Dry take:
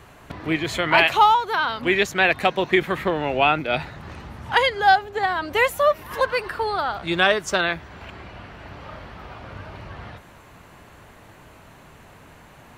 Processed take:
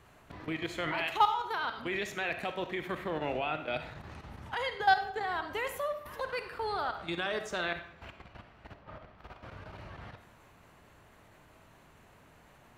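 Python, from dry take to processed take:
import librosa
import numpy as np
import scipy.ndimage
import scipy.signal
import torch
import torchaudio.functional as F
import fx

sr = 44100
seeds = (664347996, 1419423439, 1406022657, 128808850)

y = fx.lowpass(x, sr, hz=fx.line((8.73, 1300.0), (9.17, 3300.0)), slope=6, at=(8.73, 9.17), fade=0.02)
y = fx.level_steps(y, sr, step_db=13)
y = fx.rev_freeverb(y, sr, rt60_s=0.67, hf_ratio=0.8, predelay_ms=10, drr_db=8.0)
y = y * librosa.db_to_amplitude(-7.5)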